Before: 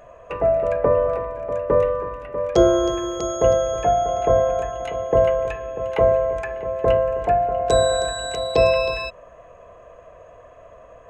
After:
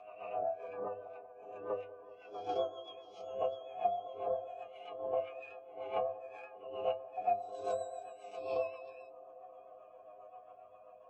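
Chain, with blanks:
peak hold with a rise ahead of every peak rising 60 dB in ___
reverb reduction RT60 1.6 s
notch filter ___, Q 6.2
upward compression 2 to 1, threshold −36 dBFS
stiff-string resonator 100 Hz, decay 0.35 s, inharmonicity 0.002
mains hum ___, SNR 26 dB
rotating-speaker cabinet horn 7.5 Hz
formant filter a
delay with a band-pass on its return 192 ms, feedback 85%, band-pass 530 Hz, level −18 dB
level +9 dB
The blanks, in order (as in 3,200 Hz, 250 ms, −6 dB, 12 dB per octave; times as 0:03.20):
0.83 s, 580 Hz, 60 Hz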